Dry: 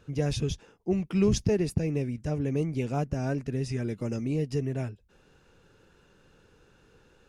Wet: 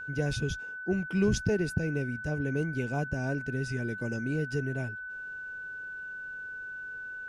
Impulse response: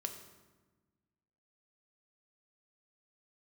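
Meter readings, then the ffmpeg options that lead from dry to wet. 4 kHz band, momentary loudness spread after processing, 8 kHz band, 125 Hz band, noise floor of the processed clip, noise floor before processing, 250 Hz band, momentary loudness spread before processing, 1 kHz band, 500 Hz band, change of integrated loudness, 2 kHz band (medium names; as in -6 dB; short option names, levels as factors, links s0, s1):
-2.5 dB, 11 LU, -2.5 dB, -2.5 dB, -41 dBFS, -62 dBFS, -2.5 dB, 7 LU, -2.5 dB, -2.5 dB, -3.0 dB, +14.0 dB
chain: -af "bandreject=f=1300:w=12,aeval=exprs='val(0)+0.0178*sin(2*PI*1500*n/s)':c=same,volume=0.75"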